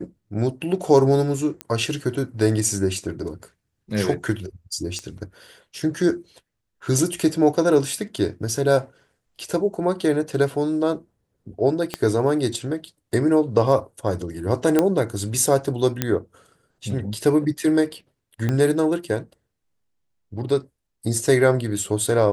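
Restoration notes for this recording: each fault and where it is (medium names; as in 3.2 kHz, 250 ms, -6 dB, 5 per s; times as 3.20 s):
1.61 s: pop -13 dBFS
4.99 s: pop -19 dBFS
11.94 s: pop -9 dBFS
14.79 s: pop -5 dBFS
16.02 s: pop -5 dBFS
18.49 s: pop -11 dBFS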